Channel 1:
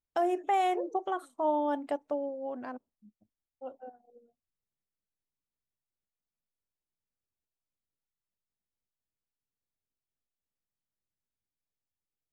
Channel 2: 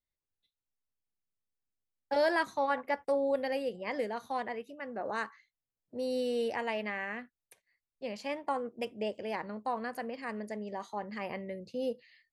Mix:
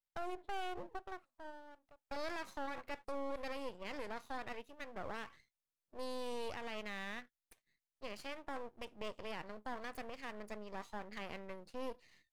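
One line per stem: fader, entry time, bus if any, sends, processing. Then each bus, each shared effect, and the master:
-4.5 dB, 0.00 s, no send, local Wiener filter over 15 samples; peaking EQ 270 Hz -12 dB 0.32 oct; auto duck -23 dB, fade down 1.25 s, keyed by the second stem
-1.0 dB, 0.00 s, no send, none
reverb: none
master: bass shelf 410 Hz -7.5 dB; half-wave rectifier; peak limiter -31 dBFS, peak gain reduction 11 dB

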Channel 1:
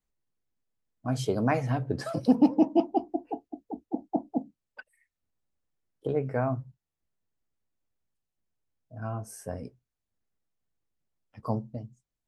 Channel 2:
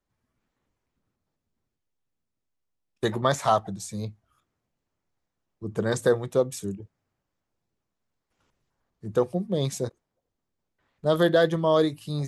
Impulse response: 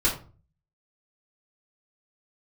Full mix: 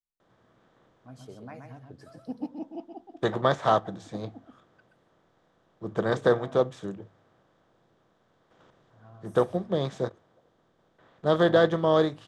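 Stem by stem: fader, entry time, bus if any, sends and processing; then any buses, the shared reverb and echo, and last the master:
-10.0 dB, 0.00 s, no send, echo send -5.5 dB, none
-1.5 dB, 0.20 s, no send, no echo send, spectral levelling over time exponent 0.6; low-pass 4 kHz 12 dB/octave; hum notches 50/100 Hz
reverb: none
echo: delay 126 ms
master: upward expansion 1.5:1, over -33 dBFS

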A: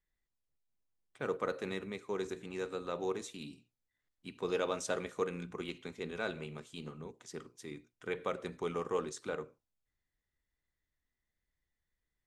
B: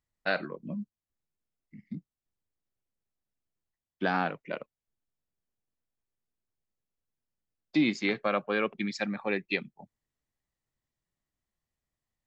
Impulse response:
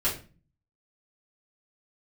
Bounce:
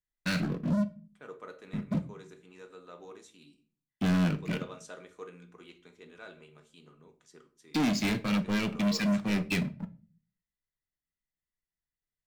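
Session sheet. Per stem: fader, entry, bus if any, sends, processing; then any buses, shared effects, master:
-11.5 dB, 0.00 s, send -13 dB, bass shelf 220 Hz -8 dB
-3.5 dB, 0.00 s, send -17 dB, FFT filter 210 Hz 0 dB, 670 Hz -23 dB, 2.7 kHz -7 dB; waveshaping leveller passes 5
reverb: on, RT60 0.35 s, pre-delay 3 ms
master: none

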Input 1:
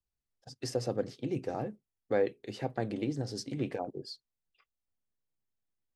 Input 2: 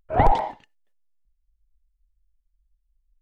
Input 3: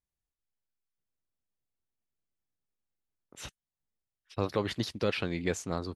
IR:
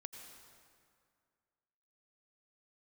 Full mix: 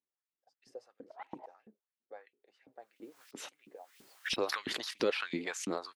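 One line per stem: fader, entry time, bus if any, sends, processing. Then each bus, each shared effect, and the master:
-20.0 dB, 0.00 s, no send, none
-19.5 dB, 1.00 s, no send, sawtooth tremolo in dB swelling 8.7 Hz, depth 29 dB
-3.0 dB, 0.00 s, no send, high-pass 41 Hz; peaking EQ 590 Hz -4 dB 1 oct; swell ahead of each attack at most 60 dB/s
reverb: none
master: LFO high-pass saw up 3 Hz 220–3100 Hz; tape noise reduction on one side only decoder only

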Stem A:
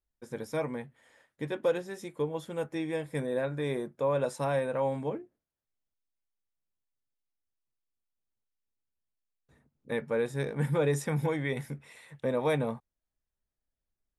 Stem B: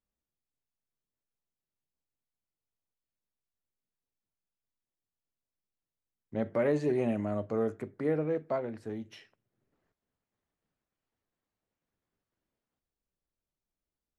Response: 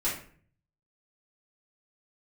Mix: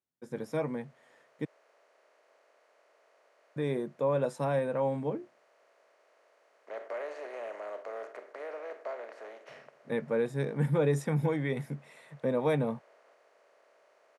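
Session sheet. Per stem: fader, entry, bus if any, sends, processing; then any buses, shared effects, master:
-1.5 dB, 0.00 s, muted 1.45–3.56 s, no send, none
-8.0 dB, 0.35 s, no send, spectral levelling over time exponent 0.4; high-pass 600 Hz 24 dB/octave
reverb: none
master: high-pass 130 Hz 24 dB/octave; tilt EQ -1.5 dB/octave

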